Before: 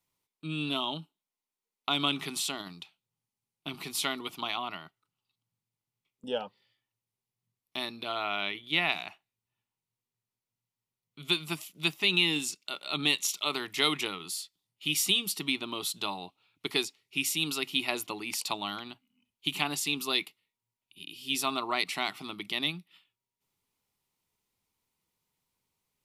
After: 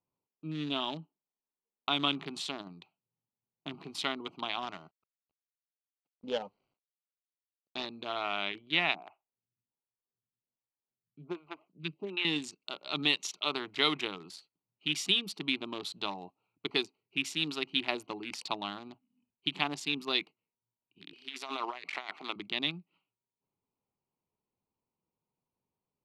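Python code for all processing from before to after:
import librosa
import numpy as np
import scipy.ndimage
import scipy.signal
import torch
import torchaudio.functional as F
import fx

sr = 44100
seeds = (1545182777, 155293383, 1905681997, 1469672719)

y = fx.chain(x, sr, fx.cvsd(bps=32000),
    fx.high_shelf(hz=2500.0, db=5.5), at=(4.62, 7.86))
y = fx.chain(y, sr, fx.air_absorb(metres=270.0),
    fx.stagger_phaser(hz=1.3), at=(8.95, 12.25))
y = fx.chain(y, sr, fx.highpass(hz=460.0, slope=12),
    fx.peak_eq(hz=2200.0, db=9.5, octaves=0.29),
    fx.over_compress(threshold_db=-36.0, ratio=-1.0), at=(21.13, 22.36))
y = fx.wiener(y, sr, points=25)
y = scipy.signal.sosfilt(scipy.signal.butter(2, 4800.0, 'lowpass', fs=sr, output='sos'), y)
y = fx.low_shelf(y, sr, hz=86.0, db=-11.5)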